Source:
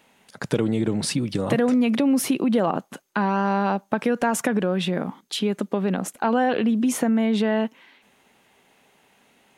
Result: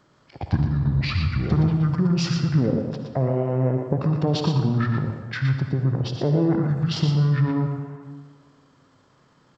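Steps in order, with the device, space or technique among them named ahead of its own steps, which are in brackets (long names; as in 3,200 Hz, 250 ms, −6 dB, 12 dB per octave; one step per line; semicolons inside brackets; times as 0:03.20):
monster voice (pitch shifter −7.5 semitones; formants moved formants −5 semitones; low-shelf EQ 170 Hz +4 dB; single-tap delay 118 ms −6.5 dB; convolution reverb RT60 1.6 s, pre-delay 50 ms, DRR 6.5 dB)
level −1.5 dB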